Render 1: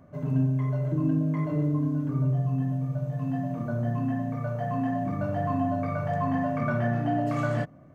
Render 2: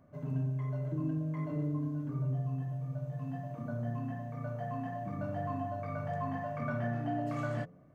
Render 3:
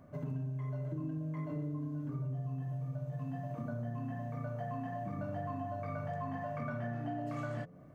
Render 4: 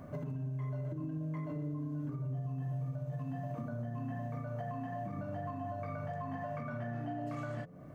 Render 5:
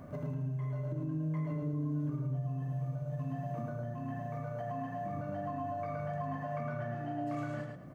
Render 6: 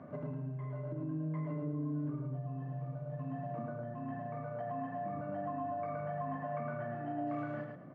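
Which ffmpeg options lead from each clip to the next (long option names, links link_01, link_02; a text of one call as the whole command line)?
ffmpeg -i in.wav -af "bandreject=frequency=87.8:width_type=h:width=4,bandreject=frequency=175.6:width_type=h:width=4,bandreject=frequency=263.4:width_type=h:width=4,bandreject=frequency=351.2:width_type=h:width=4,bandreject=frequency=439:width_type=h:width=4,bandreject=frequency=526.8:width_type=h:width=4,volume=-8dB" out.wav
ffmpeg -i in.wav -af "acompressor=threshold=-42dB:ratio=4,volume=5dB" out.wav
ffmpeg -i in.wav -af "alimiter=level_in=16dB:limit=-24dB:level=0:latency=1:release=468,volume=-16dB,volume=8.5dB" out.wav
ffmpeg -i in.wav -af "aecho=1:1:108|216|324|432:0.596|0.161|0.0434|0.0117" out.wav
ffmpeg -i in.wav -af "highpass=160,lowpass=2100" out.wav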